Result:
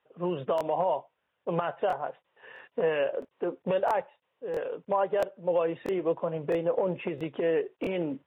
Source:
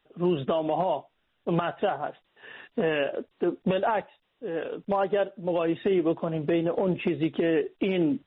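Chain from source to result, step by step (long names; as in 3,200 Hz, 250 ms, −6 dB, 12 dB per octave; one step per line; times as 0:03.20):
loudspeaker in its box 110–3,000 Hz, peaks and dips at 220 Hz −8 dB, 320 Hz −5 dB, 520 Hz +7 dB, 970 Hz +6 dB
regular buffer underruns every 0.66 s, samples 1,024, repeat, from 0:00.56
level −4 dB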